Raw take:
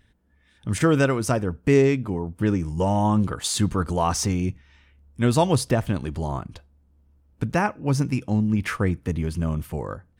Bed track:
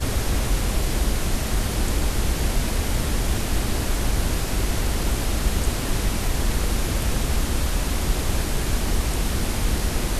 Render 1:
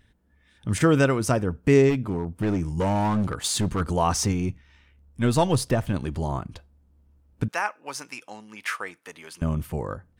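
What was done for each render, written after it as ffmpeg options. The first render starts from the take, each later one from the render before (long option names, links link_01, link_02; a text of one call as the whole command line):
ffmpeg -i in.wav -filter_complex "[0:a]asplit=3[link_01][link_02][link_03];[link_01]afade=type=out:start_time=1.89:duration=0.02[link_04];[link_02]asoftclip=type=hard:threshold=-19.5dB,afade=type=in:start_time=1.89:duration=0.02,afade=type=out:start_time=3.8:duration=0.02[link_05];[link_03]afade=type=in:start_time=3.8:duration=0.02[link_06];[link_04][link_05][link_06]amix=inputs=3:normalize=0,asettb=1/sr,asplit=3[link_07][link_08][link_09];[link_07]atrim=end=4.324[link_10];[link_08]atrim=start=4.32:end=5.94,asetpts=PTS-STARTPTS,afade=type=in:duration=0.004:curve=qsin,afade=type=out:start_time=1.616:duration=0.004:curve=qsin,aeval=exprs='if(lt(val(0),0),0.708*val(0),val(0))':channel_layout=same[link_11];[link_09]atrim=start=5.936[link_12];[link_10][link_11]acrossfade=duration=0.004:curve1=hsin:curve2=qsin[link_13];[link_13][link_12]acrossfade=duration=0.004:curve1=qsin:curve2=hsin,asettb=1/sr,asplit=3[link_14][link_15][link_16];[link_14]atrim=end=7.484[link_17];[link_15]atrim=start=7.48:end=9.42,asetpts=PTS-STARTPTS,afade=type=in:duration=0.004:curve=qsin,afade=type=out:start_time=1.936:duration=0.004:curve=qsin,highpass=890[link_18];[link_16]atrim=start=9.416[link_19];[link_17][link_18]acrossfade=duration=0.004:curve1=hsin:curve2=qsin[link_20];[link_20][link_19]acrossfade=duration=0.004:curve1=qsin:curve2=hsin" out.wav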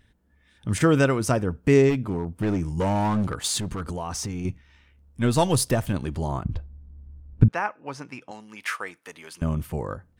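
ffmpeg -i in.wav -filter_complex "[0:a]asettb=1/sr,asplit=3[link_01][link_02][link_03];[link_01]atrim=end=3.594[link_04];[link_02]atrim=start=3.59:end=4.45,asetpts=PTS-STARTPTS,afade=type=in:duration=0.004:curve=qsin,afade=type=out:start_time=0.856:duration=0.004:curve=qsin,acompressor=threshold=-27dB:ratio=6:attack=3.2:release=140:knee=1:detection=peak[link_05];[link_03]atrim=start=4.446[link_06];[link_04][link_05]acrossfade=duration=0.004:curve1=hsin:curve2=qsin[link_07];[link_07][link_06]acrossfade=duration=0.004:curve1=qsin:curve2=hsin,asettb=1/sr,asplit=3[link_08][link_09][link_10];[link_08]atrim=end=5.374[link_11];[link_09]atrim=start=5.37:end=5.93,asetpts=PTS-STARTPTS,afade=type=in:duration=0.004:curve=qsin,afade=type=out:start_time=0.556:duration=0.004:curve=qsin,highshelf=frequency=5800:gain=9[link_12];[link_10]atrim=start=5.926[link_13];[link_11][link_12]acrossfade=duration=0.004:curve1=hsin:curve2=qsin[link_14];[link_14][link_13]acrossfade=duration=0.004:curve1=qsin:curve2=hsin,asettb=1/sr,asplit=3[link_15][link_16][link_17];[link_15]atrim=end=6.444[link_18];[link_16]atrim=start=6.44:end=8.31,asetpts=PTS-STARTPTS,afade=type=in:duration=0.004:curve=qsin,afade=type=out:start_time=1.866:duration=0.004:curve=qsin,aemphasis=mode=reproduction:type=riaa[link_19];[link_17]atrim=start=8.306[link_20];[link_18][link_19]acrossfade=duration=0.004:curve1=hsin:curve2=qsin[link_21];[link_21][link_20]acrossfade=duration=0.004:curve1=qsin:curve2=hsin" out.wav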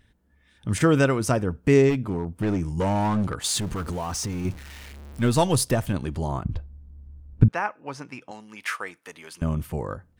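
ffmpeg -i in.wav -filter_complex "[0:a]asettb=1/sr,asplit=3[link_01][link_02][link_03];[link_01]atrim=end=3.484[link_04];[link_02]atrim=start=3.48:end=5.42,asetpts=PTS-STARTPTS,afade=type=in:duration=0.004:curve=qsin,afade=type=out:start_time=1.936:duration=0.004:curve=qsin,aeval=exprs='val(0)+0.5*0.0141*sgn(val(0))':channel_layout=same[link_05];[link_03]atrim=start=5.416[link_06];[link_04][link_05]acrossfade=duration=0.004:curve1=hsin:curve2=qsin[link_07];[link_07][link_06]acrossfade=duration=0.004:curve1=qsin:curve2=hsin" out.wav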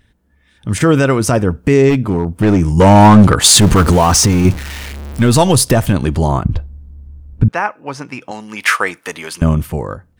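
ffmpeg -i in.wav -af "dynaudnorm=framelen=170:gausssize=11:maxgain=15.5dB,alimiter=level_in=6dB:limit=-1dB:release=50:level=0:latency=1" out.wav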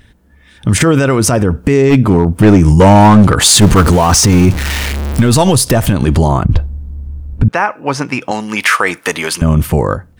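ffmpeg -i in.wav -af "acompressor=threshold=-13dB:ratio=3,alimiter=level_in=10dB:limit=-1dB:release=50:level=0:latency=1" out.wav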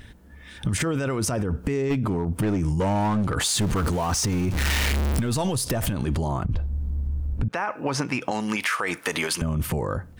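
ffmpeg -i in.wav -af "alimiter=limit=-9dB:level=0:latency=1:release=37,acompressor=threshold=-23dB:ratio=4" out.wav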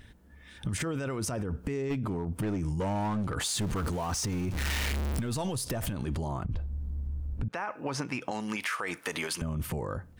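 ffmpeg -i in.wav -af "volume=-7.5dB" out.wav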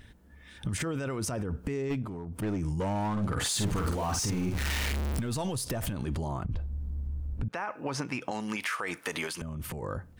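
ffmpeg -i in.wav -filter_complex "[0:a]asettb=1/sr,asplit=3[link_01][link_02][link_03];[link_01]atrim=end=2.024[link_04];[link_02]atrim=start=2.02:end=2.42,asetpts=PTS-STARTPTS,afade=type=in:duration=0.004:curve=qsin,afade=type=out:start_time=0.396:duration=0.004:curve=qsin,acompressor=threshold=-34dB:ratio=6:attack=3.2:release=140:knee=1:detection=peak[link_05];[link_03]atrim=start=2.416[link_06];[link_04][link_05]acrossfade=duration=0.004:curve1=hsin:curve2=qsin[link_07];[link_07][link_06]acrossfade=duration=0.004:curve1=qsin:curve2=hsin,asettb=1/sr,asplit=3[link_08][link_09][link_10];[link_08]atrim=end=3.124[link_11];[link_09]atrim=start=3.12:end=4.59,asetpts=PTS-STARTPTS,afade=type=in:duration=0.004:curve=qsin,afade=type=out:start_time=1.466:duration=0.004:curve=qsin,asplit=2[link_12][link_13];[link_13]adelay=49,volume=-4dB[link_14];[link_12][link_14]amix=inputs=2:normalize=0,atrim=end_sample=64827[link_15];[link_10]atrim=start=4.586[link_16];[link_11][link_15]acrossfade=duration=0.004:curve1=hsin:curve2=qsin[link_17];[link_17][link_16]acrossfade=duration=0.004:curve1=qsin:curve2=hsin,asettb=1/sr,asplit=3[link_18][link_19][link_20];[link_18]atrim=end=9.284[link_21];[link_19]atrim=start=9.28:end=9.83,asetpts=PTS-STARTPTS,afade=type=in:duration=0.004:curve=qsin,afade=type=out:start_time=0.546:duration=0.004:curve=qsin,acompressor=threshold=-33dB:ratio=5:attack=3.2:release=140:knee=1:detection=peak[link_22];[link_20]atrim=start=9.826[link_23];[link_21][link_22]acrossfade=duration=0.004:curve1=hsin:curve2=qsin[link_24];[link_24][link_23]acrossfade=duration=0.004:curve1=qsin:curve2=hsin" out.wav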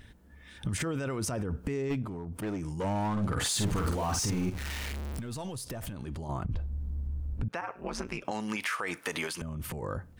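ffmpeg -i in.wav -filter_complex "[0:a]asettb=1/sr,asplit=3[link_01][link_02][link_03];[link_01]atrim=end=2.374[link_04];[link_02]atrim=start=2.37:end=2.84,asetpts=PTS-STARTPTS,afade=type=in:duration=0.004:curve=qsin,afade=type=out:start_time=0.466:duration=0.004:curve=qsin,lowshelf=frequency=160:gain=-9.5[link_05];[link_03]atrim=start=2.836[link_06];[link_04][link_05]acrossfade=duration=0.004:curve1=hsin:curve2=qsin[link_07];[link_07][link_06]acrossfade=duration=0.004:curve1=qsin:curve2=hsin,asplit=3[link_08][link_09][link_10];[link_08]afade=type=out:start_time=7.6:duration=0.02[link_11];[link_09]aeval=exprs='val(0)*sin(2*PI*94*n/s)':channel_layout=same,afade=type=in:start_time=7.6:duration=0.02,afade=type=out:start_time=8.23:duration=0.02[link_12];[link_10]afade=type=in:start_time=8.23:duration=0.02[link_13];[link_11][link_12][link_13]amix=inputs=3:normalize=0,asplit=3[link_14][link_15][link_16];[link_14]atrim=end=4.502[link_17];[link_15]atrim=start=4.498:end=6.292,asetpts=PTS-STARTPTS,volume=-6dB[link_18];[link_16]atrim=start=6.288[link_19];[link_17][link_18]acrossfade=duration=0.004:curve1=hsin:curve2=hsin[link_20];[link_20][link_19]acrossfade=duration=0.004:curve1=hsin:curve2=hsin" out.wav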